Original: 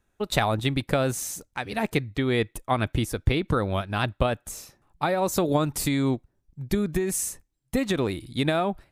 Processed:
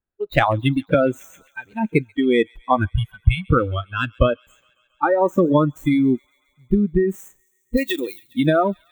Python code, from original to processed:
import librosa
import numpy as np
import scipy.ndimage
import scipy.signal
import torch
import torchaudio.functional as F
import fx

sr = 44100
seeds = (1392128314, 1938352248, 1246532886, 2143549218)

p1 = scipy.ndimage.median_filter(x, 9, mode='constant')
p2 = fx.cheby1_bandstop(p1, sr, low_hz=200.0, high_hz=710.0, order=3, at=(2.85, 3.49))
p3 = fx.riaa(p2, sr, side='recording', at=(7.76, 8.34), fade=0.02)
p4 = fx.noise_reduce_blind(p3, sr, reduce_db=25)
p5 = fx.band_shelf(p4, sr, hz=7800.0, db=-12.5, octaves=1.7)
p6 = p5 + fx.echo_wet_highpass(p5, sr, ms=137, feedback_pct=73, hz=2700.0, wet_db=-22, dry=0)
p7 = fx.band_squash(p6, sr, depth_pct=70, at=(0.94, 1.48))
y = p7 * 10.0 ** (8.5 / 20.0)